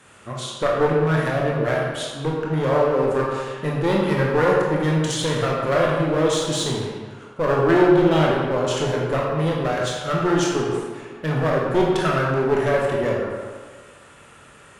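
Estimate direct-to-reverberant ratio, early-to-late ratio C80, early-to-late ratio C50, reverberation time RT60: −3.5 dB, 2.0 dB, 0.0 dB, 1.6 s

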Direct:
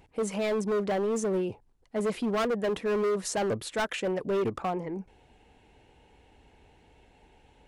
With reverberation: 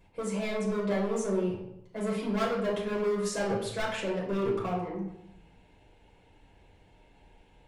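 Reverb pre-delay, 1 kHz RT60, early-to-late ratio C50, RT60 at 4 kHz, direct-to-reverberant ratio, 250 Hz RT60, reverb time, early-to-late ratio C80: 5 ms, 0.80 s, 4.5 dB, 0.60 s, −4.5 dB, 0.95 s, 0.80 s, 7.0 dB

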